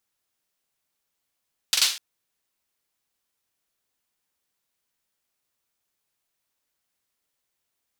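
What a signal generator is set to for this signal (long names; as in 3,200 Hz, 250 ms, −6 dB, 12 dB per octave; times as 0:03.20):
synth clap length 0.25 s, bursts 3, apart 43 ms, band 4,000 Hz, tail 0.40 s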